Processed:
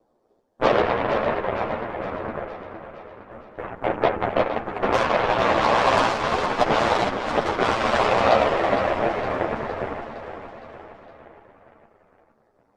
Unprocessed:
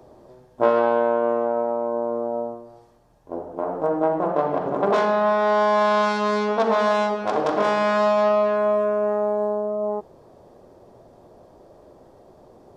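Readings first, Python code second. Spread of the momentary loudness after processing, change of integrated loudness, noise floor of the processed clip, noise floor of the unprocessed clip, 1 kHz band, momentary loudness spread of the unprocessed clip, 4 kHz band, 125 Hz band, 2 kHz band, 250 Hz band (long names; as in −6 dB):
19 LU, −1.0 dB, −65 dBFS, −52 dBFS, +1.0 dB, 9 LU, +6.0 dB, +4.5 dB, +4.0 dB, −1.5 dB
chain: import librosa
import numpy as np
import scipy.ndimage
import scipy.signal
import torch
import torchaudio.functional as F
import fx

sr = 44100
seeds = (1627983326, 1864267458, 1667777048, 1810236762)

y = fx.whisperise(x, sr, seeds[0])
y = y * np.sin(2.0 * np.pi * 59.0 * np.arange(len(y)) / sr)
y = fx.peak_eq(y, sr, hz=62.0, db=-11.5, octaves=2.1)
y = fx.cheby_harmonics(y, sr, harmonics=(7, 8), levels_db=(-18, -25), full_scale_db=-8.0)
y = fx.echo_feedback(y, sr, ms=462, feedback_pct=55, wet_db=-9)
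y = fx.ensemble(y, sr)
y = F.gain(torch.from_numpy(y), 7.5).numpy()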